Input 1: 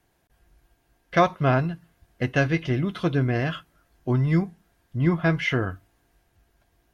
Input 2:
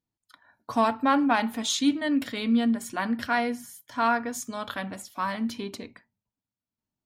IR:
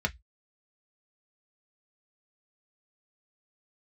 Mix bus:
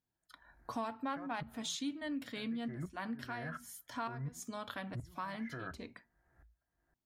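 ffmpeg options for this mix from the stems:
-filter_complex "[0:a]highshelf=f=2300:t=q:w=3:g=-9,acompressor=threshold=0.0447:ratio=5,aeval=exprs='val(0)*pow(10,-33*if(lt(mod(-1.4*n/s,1),2*abs(-1.4)/1000),1-mod(-1.4*n/s,1)/(2*abs(-1.4)/1000),(mod(-1.4*n/s,1)-2*abs(-1.4)/1000)/(1-2*abs(-1.4)/1000))/20)':c=same,volume=0.708,asplit=3[s0][s1][s2];[s1]volume=0.237[s3];[1:a]volume=0.668[s4];[s2]apad=whole_len=311072[s5];[s4][s5]sidechaincompress=threshold=0.00501:ratio=8:attack=5.7:release=155[s6];[2:a]atrim=start_sample=2205[s7];[s3][s7]afir=irnorm=-1:irlink=0[s8];[s0][s6][s8]amix=inputs=3:normalize=0,acompressor=threshold=0.00794:ratio=2.5"

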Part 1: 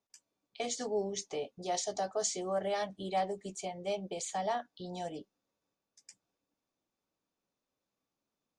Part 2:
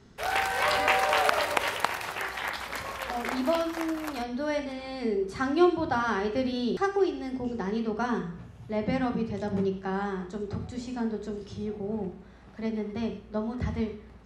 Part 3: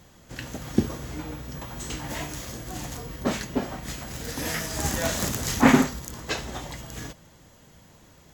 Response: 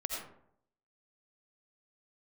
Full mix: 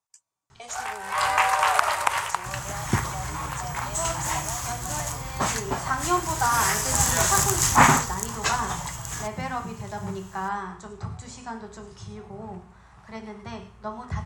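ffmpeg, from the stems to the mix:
-filter_complex "[0:a]alimiter=level_in=1.33:limit=0.0631:level=0:latency=1:release=109,volume=0.75,volume=0.668,asplit=3[s0][s1][s2];[s0]atrim=end=1.14,asetpts=PTS-STARTPTS,afade=t=out:st=1.136:d=0.004:c=hsin[s3];[s1]atrim=start=1.14:end=2.29,asetpts=PTS-STARTPTS,volume=0[s4];[s2]atrim=start=2.29,asetpts=PTS-STARTPTS,afade=t=in:d=0.004:c=hsin[s5];[s3][s4][s5]concat=n=3:v=0:a=1,asplit=2[s6][s7];[1:a]adelay=500,volume=0.944[s8];[2:a]adelay=2150,volume=1.19[s9];[s7]apad=whole_len=650804[s10];[s8][s10]sidechaincompress=threshold=0.00398:ratio=5:attack=16:release=123[s11];[s6][s11][s9]amix=inputs=3:normalize=0,equalizer=f=125:t=o:w=1:g=6,equalizer=f=250:t=o:w=1:g=-11,equalizer=f=500:t=o:w=1:g=-7,equalizer=f=1000:t=o:w=1:g=10,equalizer=f=4000:t=o:w=1:g=-3,equalizer=f=8000:t=o:w=1:g=11"

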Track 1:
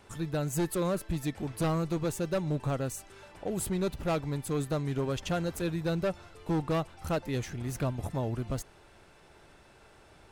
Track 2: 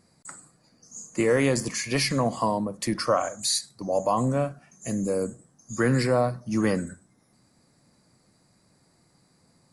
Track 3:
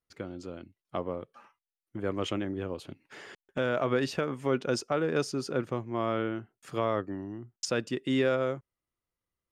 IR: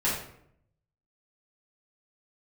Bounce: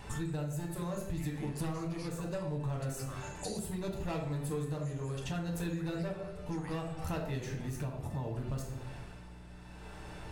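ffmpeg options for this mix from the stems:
-filter_complex "[0:a]tremolo=f=0.69:d=0.7,aeval=exprs='val(0)+0.00126*(sin(2*PI*60*n/s)+sin(2*PI*2*60*n/s)/2+sin(2*PI*3*60*n/s)/3+sin(2*PI*4*60*n/s)/4+sin(2*PI*5*60*n/s)/5)':c=same,volume=1.33,asplit=2[s0][s1];[s1]volume=0.447[s2];[1:a]highpass=1200,volume=0.376,acompressor=threshold=0.00891:ratio=6,volume=1[s3];[3:a]atrim=start_sample=2205[s4];[s2][s4]afir=irnorm=-1:irlink=0[s5];[s0][s3][s5]amix=inputs=3:normalize=0,acompressor=threshold=0.0178:ratio=5"

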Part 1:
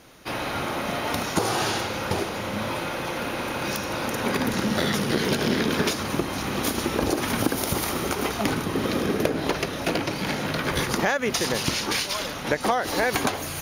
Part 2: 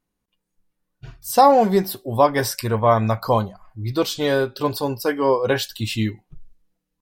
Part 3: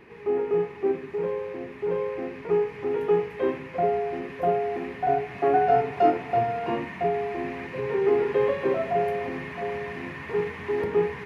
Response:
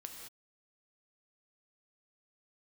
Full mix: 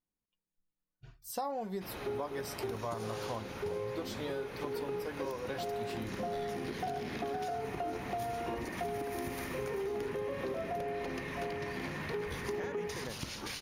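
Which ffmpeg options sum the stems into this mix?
-filter_complex "[0:a]lowshelf=f=100:g=11,adelay=1550,volume=0.168[s0];[1:a]volume=0.168,asplit=2[s1][s2];[2:a]alimiter=limit=0.106:level=0:latency=1,adelay=1800,volume=0.708[s3];[s2]apad=whole_len=575718[s4];[s3][s4]sidechaincompress=threshold=0.0224:ratio=8:attack=16:release=676[s5];[s0][s1][s5]amix=inputs=3:normalize=0,acompressor=threshold=0.0178:ratio=4"

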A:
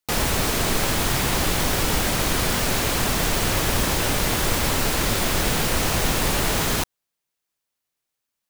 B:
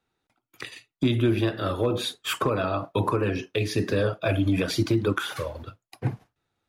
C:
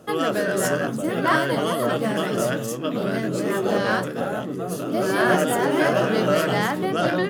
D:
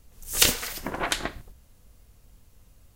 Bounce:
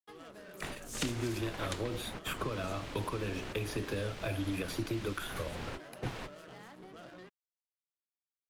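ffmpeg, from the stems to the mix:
-filter_complex "[0:a]lowpass=2900,volume=0.158[s0];[1:a]equalizer=f=4800:t=o:w=1.4:g=-7.5,volume=0.75,asplit=2[s1][s2];[2:a]lowpass=7500,acompressor=threshold=0.0708:ratio=6,asoftclip=type=tanh:threshold=0.0668,volume=0.119[s3];[3:a]lowpass=7800,adelay=600,volume=0.501[s4];[s2]apad=whole_len=374583[s5];[s0][s5]sidechaingate=range=0.0224:threshold=0.00501:ratio=16:detection=peak[s6];[s6][s1][s3][s4]amix=inputs=4:normalize=0,equalizer=f=12000:t=o:w=1.2:g=7.5,acrossover=split=91|290|2400|7600[s7][s8][s9][s10][s11];[s7]acompressor=threshold=0.00631:ratio=4[s12];[s8]acompressor=threshold=0.00891:ratio=4[s13];[s9]acompressor=threshold=0.0126:ratio=4[s14];[s10]acompressor=threshold=0.00708:ratio=4[s15];[s11]acompressor=threshold=0.00251:ratio=4[s16];[s12][s13][s14][s15][s16]amix=inputs=5:normalize=0,aeval=exprs='sgn(val(0))*max(abs(val(0))-0.00178,0)':c=same"

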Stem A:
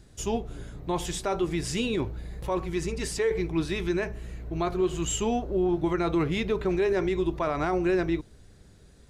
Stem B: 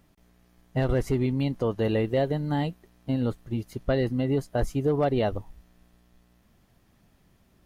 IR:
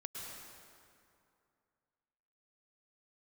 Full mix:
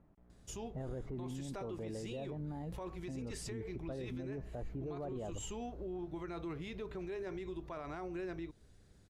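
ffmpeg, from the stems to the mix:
-filter_complex "[0:a]acompressor=threshold=0.0282:ratio=2.5,adelay=300,volume=0.316[s0];[1:a]lowpass=1100,alimiter=level_in=1.06:limit=0.0631:level=0:latency=1:release=107,volume=0.944,volume=0.668[s1];[s0][s1]amix=inputs=2:normalize=0,alimiter=level_in=3.55:limit=0.0631:level=0:latency=1:release=27,volume=0.282"

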